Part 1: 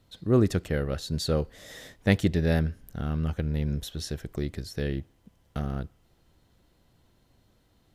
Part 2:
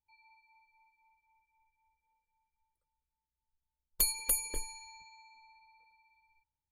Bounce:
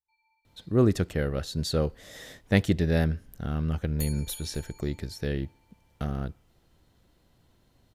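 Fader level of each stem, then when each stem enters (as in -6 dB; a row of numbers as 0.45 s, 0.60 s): 0.0 dB, -8.5 dB; 0.45 s, 0.00 s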